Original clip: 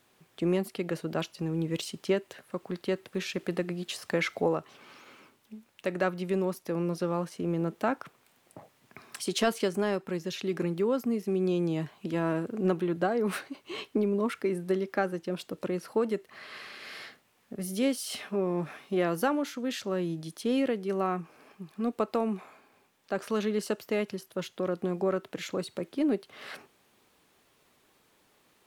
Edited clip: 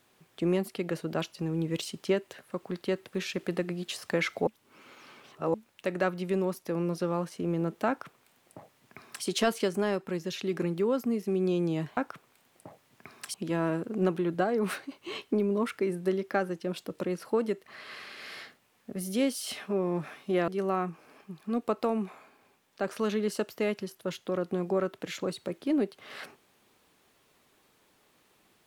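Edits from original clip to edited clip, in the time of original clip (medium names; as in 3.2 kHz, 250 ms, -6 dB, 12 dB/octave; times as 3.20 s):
4.47–5.54 s: reverse
7.88–9.25 s: copy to 11.97 s
19.11–20.79 s: delete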